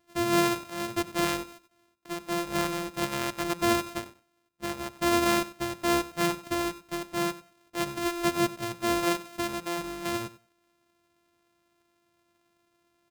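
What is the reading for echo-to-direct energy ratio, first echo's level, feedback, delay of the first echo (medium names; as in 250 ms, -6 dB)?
-17.0 dB, -17.0 dB, 19%, 95 ms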